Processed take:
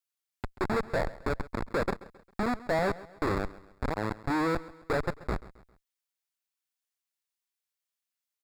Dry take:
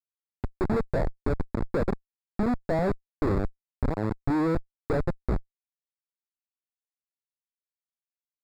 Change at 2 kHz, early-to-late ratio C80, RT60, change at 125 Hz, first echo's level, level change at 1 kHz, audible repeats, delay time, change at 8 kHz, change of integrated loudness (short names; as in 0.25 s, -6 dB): +5.0 dB, none, none, -6.5 dB, -18.5 dB, +2.0 dB, 3, 0.134 s, n/a, -2.5 dB